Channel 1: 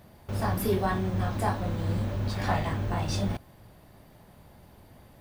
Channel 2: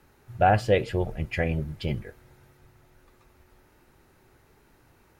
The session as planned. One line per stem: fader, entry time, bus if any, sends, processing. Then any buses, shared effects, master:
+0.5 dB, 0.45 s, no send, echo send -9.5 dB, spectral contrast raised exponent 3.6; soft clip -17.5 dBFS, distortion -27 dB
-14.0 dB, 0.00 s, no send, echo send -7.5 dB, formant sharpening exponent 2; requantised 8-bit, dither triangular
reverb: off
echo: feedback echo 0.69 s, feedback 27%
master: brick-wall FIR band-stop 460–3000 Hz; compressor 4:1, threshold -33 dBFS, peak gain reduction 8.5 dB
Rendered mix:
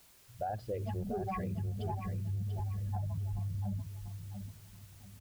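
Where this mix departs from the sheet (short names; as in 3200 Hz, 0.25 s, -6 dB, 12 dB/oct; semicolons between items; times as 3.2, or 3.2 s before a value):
stem 1 +0.5 dB -> -6.0 dB; master: missing brick-wall FIR band-stop 460–3000 Hz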